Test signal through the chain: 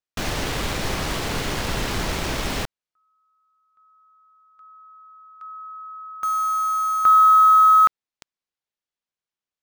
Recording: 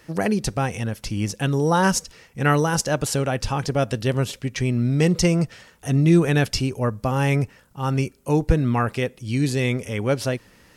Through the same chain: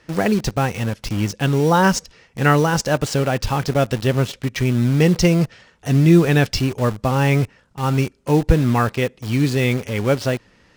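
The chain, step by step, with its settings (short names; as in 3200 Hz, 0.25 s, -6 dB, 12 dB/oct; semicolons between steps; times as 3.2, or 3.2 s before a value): LPF 5700 Hz 12 dB/oct; in parallel at -3 dB: bit-crush 5-bit; on the sum: gain -1 dB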